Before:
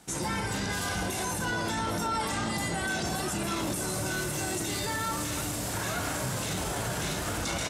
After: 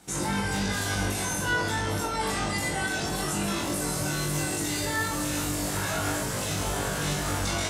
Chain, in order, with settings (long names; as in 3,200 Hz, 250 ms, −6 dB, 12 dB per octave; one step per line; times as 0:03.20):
flutter between parallel walls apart 3.5 metres, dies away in 0.36 s